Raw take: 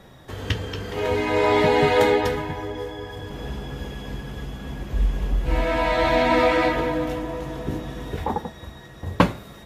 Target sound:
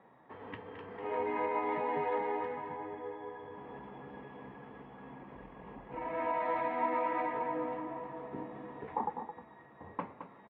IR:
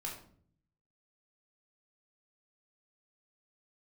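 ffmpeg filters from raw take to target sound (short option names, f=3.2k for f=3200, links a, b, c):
-filter_complex "[0:a]atempo=0.92,alimiter=limit=-13.5dB:level=0:latency=1:release=402,highpass=280,equalizer=f=360:t=q:w=4:g=-5,equalizer=f=590:t=q:w=4:g=-5,equalizer=f=940:t=q:w=4:g=5,equalizer=f=1.5k:t=q:w=4:g=-8,lowpass=f=2k:w=0.5412,lowpass=f=2k:w=1.3066,asplit=2[a][b];[b]aecho=0:1:217:0.335[c];[a][c]amix=inputs=2:normalize=0,volume=-8.5dB"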